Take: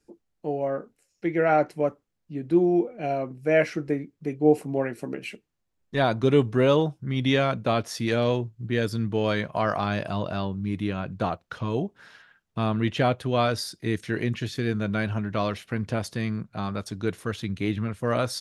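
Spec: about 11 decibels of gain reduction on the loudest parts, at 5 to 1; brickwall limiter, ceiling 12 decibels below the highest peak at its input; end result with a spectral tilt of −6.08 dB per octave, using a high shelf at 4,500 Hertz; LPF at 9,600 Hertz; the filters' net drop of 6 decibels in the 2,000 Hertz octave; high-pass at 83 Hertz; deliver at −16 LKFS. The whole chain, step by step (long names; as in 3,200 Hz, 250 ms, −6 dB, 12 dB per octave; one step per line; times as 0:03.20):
high-pass filter 83 Hz
low-pass filter 9,600 Hz
parametric band 2,000 Hz −7.5 dB
high-shelf EQ 4,500 Hz −3 dB
downward compressor 5 to 1, threshold −27 dBFS
level +22 dB
brickwall limiter −5.5 dBFS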